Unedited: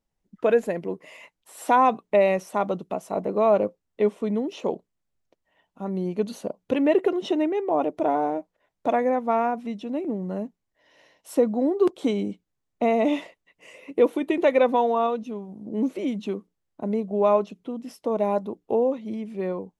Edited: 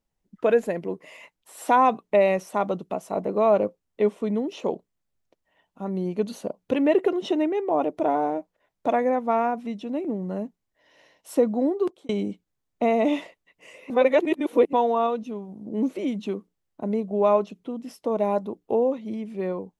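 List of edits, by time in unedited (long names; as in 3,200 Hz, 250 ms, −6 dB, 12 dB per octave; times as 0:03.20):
0:11.66–0:12.09: fade out
0:13.90–0:14.73: reverse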